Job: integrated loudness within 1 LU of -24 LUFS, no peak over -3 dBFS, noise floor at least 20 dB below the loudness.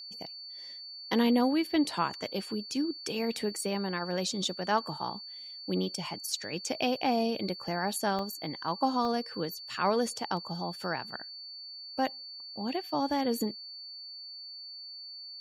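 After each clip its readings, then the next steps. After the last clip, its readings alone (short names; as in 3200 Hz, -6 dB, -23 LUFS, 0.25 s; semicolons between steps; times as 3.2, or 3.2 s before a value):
dropouts 3; longest dropout 1.3 ms; steady tone 4500 Hz; tone level -42 dBFS; loudness -32.5 LUFS; peak -14.0 dBFS; loudness target -24.0 LUFS
-> interpolate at 8.19/9.05/10.37, 1.3 ms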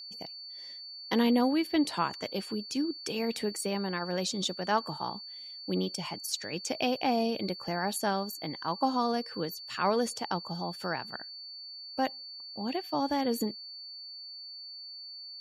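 dropouts 0; steady tone 4500 Hz; tone level -42 dBFS
-> notch 4500 Hz, Q 30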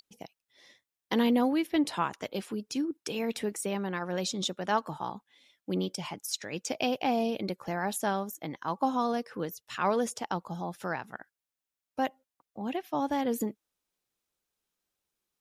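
steady tone none; loudness -32.0 LUFS; peak -14.0 dBFS; loudness target -24.0 LUFS
-> gain +8 dB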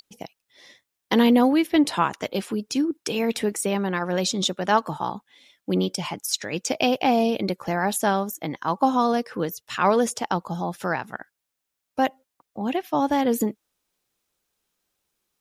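loudness -24.0 LUFS; peak -6.0 dBFS; noise floor -82 dBFS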